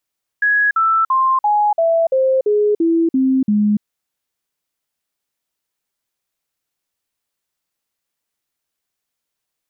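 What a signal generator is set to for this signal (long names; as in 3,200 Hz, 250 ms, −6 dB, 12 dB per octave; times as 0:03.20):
stepped sweep 1,670 Hz down, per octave 3, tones 10, 0.29 s, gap 0.05 s −11.5 dBFS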